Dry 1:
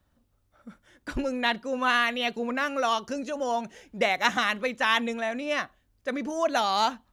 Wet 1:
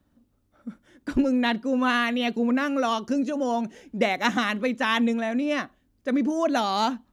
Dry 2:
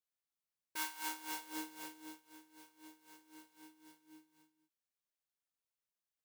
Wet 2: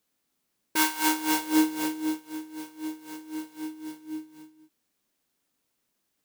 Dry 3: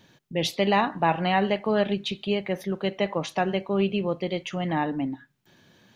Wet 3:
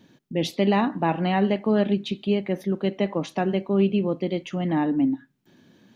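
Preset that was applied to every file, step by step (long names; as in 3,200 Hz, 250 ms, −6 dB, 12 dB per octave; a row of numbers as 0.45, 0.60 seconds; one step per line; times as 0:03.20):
parametric band 260 Hz +11.5 dB 1.3 octaves
normalise the peak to −9 dBFS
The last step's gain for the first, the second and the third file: −1.5, +15.5, −3.5 decibels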